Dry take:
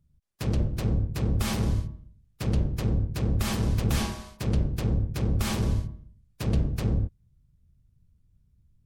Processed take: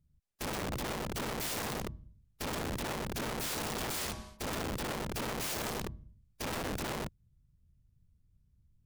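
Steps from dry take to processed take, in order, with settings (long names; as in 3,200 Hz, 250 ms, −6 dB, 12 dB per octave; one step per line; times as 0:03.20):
wrap-around overflow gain 26.5 dB
level −5 dB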